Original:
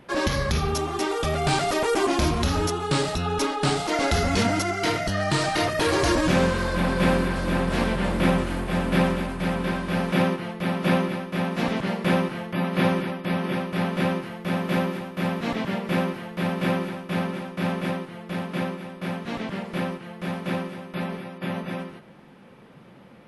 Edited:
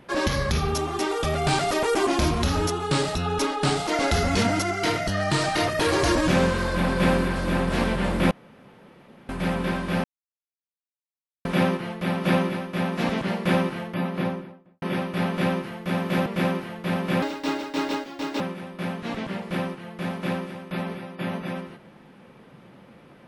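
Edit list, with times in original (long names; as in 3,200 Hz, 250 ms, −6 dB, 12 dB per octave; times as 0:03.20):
0:08.31–0:09.29: fill with room tone
0:10.04: splice in silence 1.41 s
0:12.36–0:13.41: fade out and dull
0:14.85–0:15.79: remove
0:16.75–0:18.63: play speed 159%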